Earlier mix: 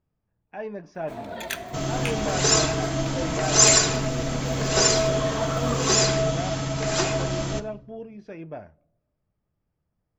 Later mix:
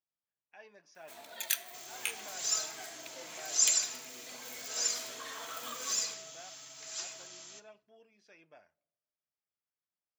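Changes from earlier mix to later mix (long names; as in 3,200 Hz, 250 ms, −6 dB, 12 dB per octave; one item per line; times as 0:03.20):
first sound +4.0 dB
second sound −9.0 dB
master: add first difference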